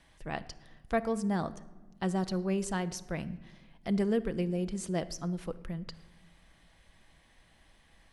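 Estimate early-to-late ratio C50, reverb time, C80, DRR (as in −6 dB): 16.5 dB, 1.2 s, 18.5 dB, 11.5 dB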